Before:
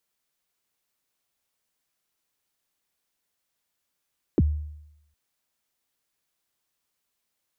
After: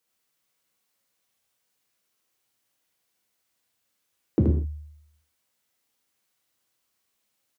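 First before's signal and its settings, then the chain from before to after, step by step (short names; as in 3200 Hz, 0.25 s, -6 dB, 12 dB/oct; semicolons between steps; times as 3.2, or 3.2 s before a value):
kick drum length 0.76 s, from 430 Hz, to 75 Hz, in 35 ms, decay 0.84 s, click off, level -14 dB
HPF 53 Hz; echo 77 ms -3.5 dB; non-linear reverb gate 0.19 s falling, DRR 2 dB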